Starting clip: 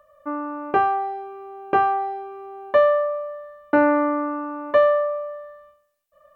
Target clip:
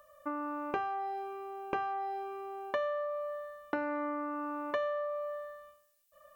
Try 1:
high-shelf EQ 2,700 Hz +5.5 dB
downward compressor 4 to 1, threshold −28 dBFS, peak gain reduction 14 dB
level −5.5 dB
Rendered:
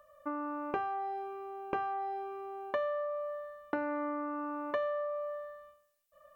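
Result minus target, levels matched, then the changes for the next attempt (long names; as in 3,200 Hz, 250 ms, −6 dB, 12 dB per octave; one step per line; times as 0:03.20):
4,000 Hz band −3.5 dB
change: high-shelf EQ 2,700 Hz +13 dB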